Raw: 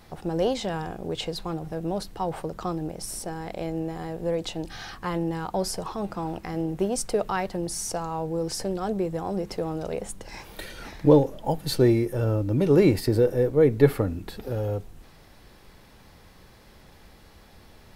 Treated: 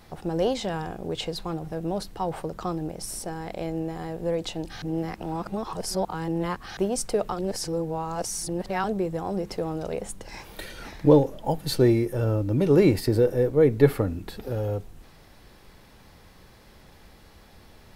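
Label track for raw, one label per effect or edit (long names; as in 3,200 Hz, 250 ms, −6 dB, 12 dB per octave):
4.820000	6.770000	reverse
7.320000	8.840000	reverse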